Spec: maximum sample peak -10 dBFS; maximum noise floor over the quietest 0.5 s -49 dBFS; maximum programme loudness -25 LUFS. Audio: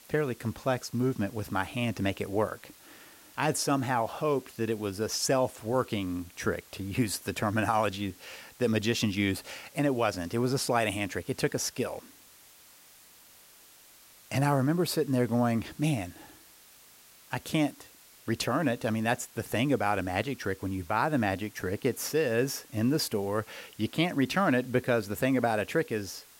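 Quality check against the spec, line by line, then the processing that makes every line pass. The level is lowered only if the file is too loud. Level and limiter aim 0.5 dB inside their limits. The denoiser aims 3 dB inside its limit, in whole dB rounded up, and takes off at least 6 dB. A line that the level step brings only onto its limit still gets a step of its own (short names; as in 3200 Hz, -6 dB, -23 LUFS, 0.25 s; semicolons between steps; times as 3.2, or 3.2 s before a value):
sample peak -11.0 dBFS: OK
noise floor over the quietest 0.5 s -56 dBFS: OK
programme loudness -30.0 LUFS: OK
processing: none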